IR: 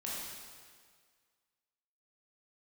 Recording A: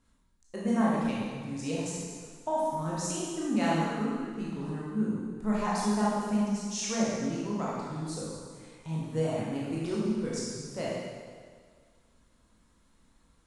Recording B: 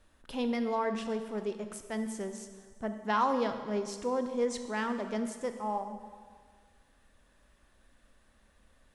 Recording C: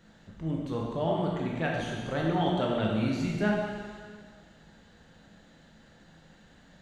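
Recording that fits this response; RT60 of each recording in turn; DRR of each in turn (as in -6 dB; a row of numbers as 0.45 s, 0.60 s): A; 1.8 s, 1.8 s, 1.8 s; -6.5 dB, 7.5 dB, -2.5 dB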